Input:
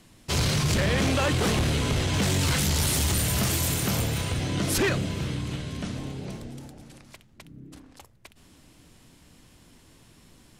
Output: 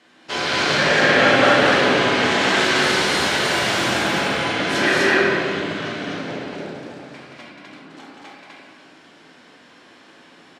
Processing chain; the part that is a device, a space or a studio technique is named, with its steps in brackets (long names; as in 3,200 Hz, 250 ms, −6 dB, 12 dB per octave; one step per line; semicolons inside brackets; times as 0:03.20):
station announcement (band-pass filter 390–4,200 Hz; parametric band 1,600 Hz +5.5 dB 0.56 octaves; loudspeakers that aren't time-aligned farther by 60 metres −3 dB, 85 metres 0 dB; convolution reverb RT60 2.2 s, pre-delay 3 ms, DRR −6.5 dB)
level +1 dB